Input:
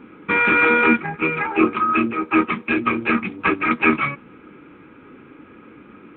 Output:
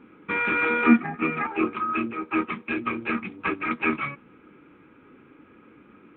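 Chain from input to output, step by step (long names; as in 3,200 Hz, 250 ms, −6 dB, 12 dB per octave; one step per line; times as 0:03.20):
0:00.86–0:01.47: hollow resonant body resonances 250/710/1,200/1,800 Hz, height 13 dB
level −8 dB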